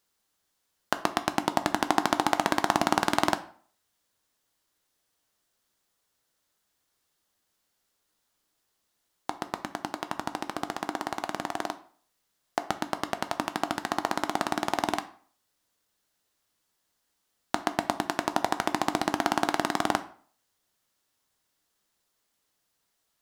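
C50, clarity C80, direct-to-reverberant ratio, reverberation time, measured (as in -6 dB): 15.0 dB, 19.5 dB, 9.5 dB, 0.50 s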